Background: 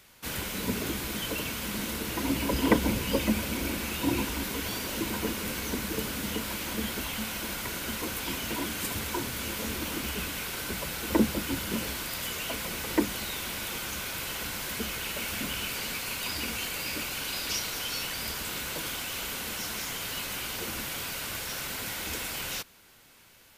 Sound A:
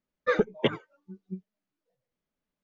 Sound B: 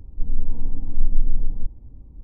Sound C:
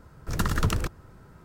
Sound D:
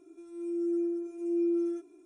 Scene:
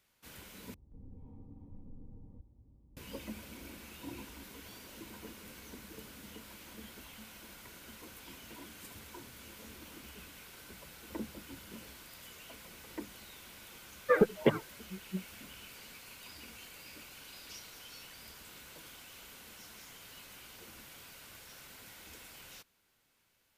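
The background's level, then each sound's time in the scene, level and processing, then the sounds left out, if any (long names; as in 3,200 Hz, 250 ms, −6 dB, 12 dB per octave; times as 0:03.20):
background −17.5 dB
0:00.74: overwrite with B −13.5 dB + high-pass filter 69 Hz
0:13.82: mix in A −0.5 dB + moving average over 10 samples
not used: C, D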